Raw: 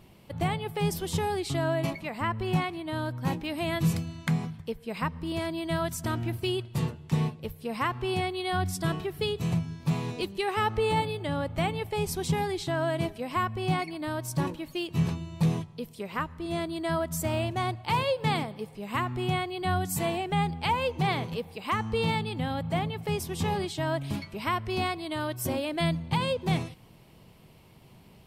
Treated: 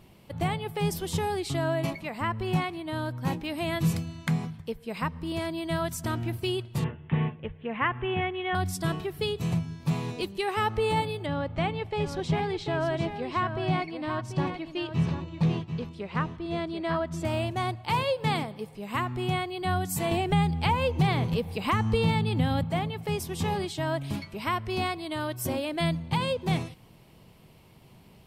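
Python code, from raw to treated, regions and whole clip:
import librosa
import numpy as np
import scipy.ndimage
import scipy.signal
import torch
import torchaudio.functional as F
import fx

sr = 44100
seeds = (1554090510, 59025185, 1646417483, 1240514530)

y = fx.chain(x, sr, fx.steep_lowpass(hz=3300.0, slope=72),
    fx.peak_eq(hz=1800.0, db=6.5, octaves=0.57), at=(6.84, 8.55))
y = fx.chain(y, sr, fx.lowpass(hz=4300.0, slope=12),
    fx.echo_single(ms=738, db=-8.5), at=(11.26, 17.25))
y = fx.chain(y, sr, fx.low_shelf(hz=170.0, db=10.0),
    fx.band_squash(depth_pct=70), at=(20.11, 22.64))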